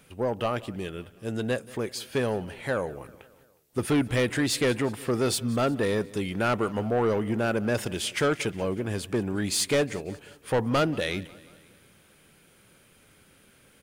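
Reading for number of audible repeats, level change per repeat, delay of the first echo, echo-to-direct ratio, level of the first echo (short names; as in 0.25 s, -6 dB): 3, -5.0 dB, 0.181 s, -19.5 dB, -21.0 dB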